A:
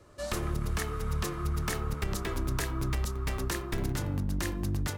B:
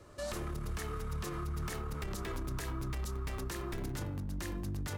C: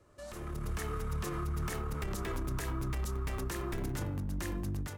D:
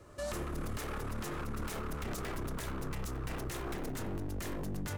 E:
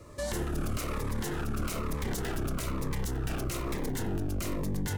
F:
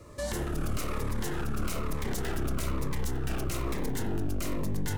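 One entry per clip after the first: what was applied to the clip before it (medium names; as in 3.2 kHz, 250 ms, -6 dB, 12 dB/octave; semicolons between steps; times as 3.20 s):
peak limiter -31.5 dBFS, peak gain reduction 10.5 dB; trim +1 dB
peaking EQ 4.3 kHz -3.5 dB 0.9 oct; level rider gain up to 11 dB; trim -8.5 dB
one-sided wavefolder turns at -38.5 dBFS; peak limiter -38.5 dBFS, peak gain reduction 10.5 dB; trim +8.5 dB
Shepard-style phaser falling 1.1 Hz; trim +6.5 dB
reverberation RT60 0.85 s, pre-delay 48 ms, DRR 10 dB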